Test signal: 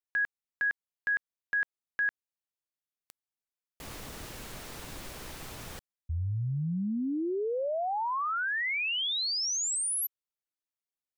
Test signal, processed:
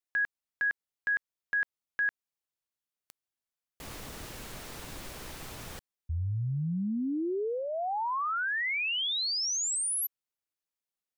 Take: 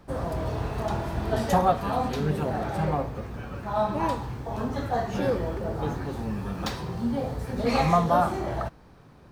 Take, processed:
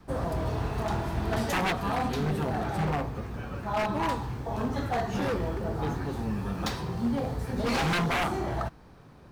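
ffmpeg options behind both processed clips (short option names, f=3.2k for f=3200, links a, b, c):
-af "aeval=exprs='0.0891*(abs(mod(val(0)/0.0891+3,4)-2)-1)':c=same,adynamicequalizer=threshold=0.00562:dfrequency=560:dqfactor=3.8:tfrequency=560:tqfactor=3.8:attack=5:release=100:ratio=0.375:range=3:mode=cutabove:tftype=bell"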